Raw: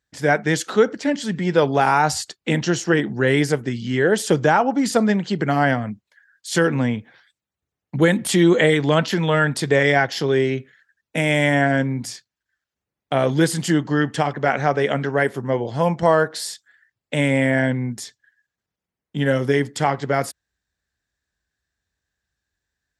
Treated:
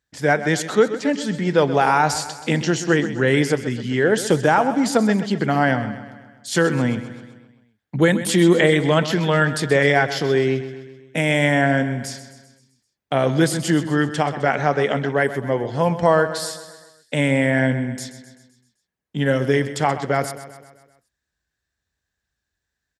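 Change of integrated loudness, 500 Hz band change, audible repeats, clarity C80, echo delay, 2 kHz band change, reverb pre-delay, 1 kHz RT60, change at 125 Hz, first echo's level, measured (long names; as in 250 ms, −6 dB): 0.0 dB, +0.5 dB, 5, no reverb audible, 129 ms, +0.5 dB, no reverb audible, no reverb audible, +0.5 dB, −13.0 dB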